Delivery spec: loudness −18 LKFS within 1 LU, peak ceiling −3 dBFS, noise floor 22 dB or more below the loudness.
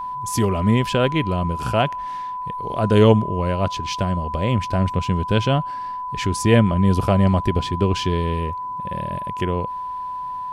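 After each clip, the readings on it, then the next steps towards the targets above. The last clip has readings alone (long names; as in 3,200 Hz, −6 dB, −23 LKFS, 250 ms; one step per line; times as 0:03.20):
crackle rate 22 per second; interfering tone 1,000 Hz; level of the tone −26 dBFS; integrated loudness −21.0 LKFS; sample peak −2.5 dBFS; target loudness −18.0 LKFS
→ click removal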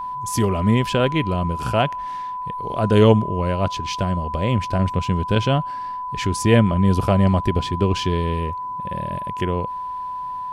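crackle rate 0 per second; interfering tone 1,000 Hz; level of the tone −26 dBFS
→ notch filter 1,000 Hz, Q 30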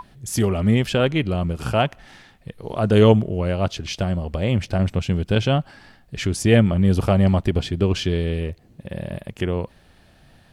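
interfering tone none found; integrated loudness −21.0 LKFS; sample peak −3.0 dBFS; target loudness −18.0 LKFS
→ level +3 dB
brickwall limiter −3 dBFS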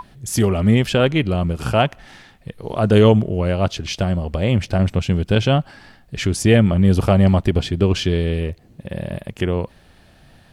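integrated loudness −18.5 LKFS; sample peak −3.0 dBFS; background noise floor −51 dBFS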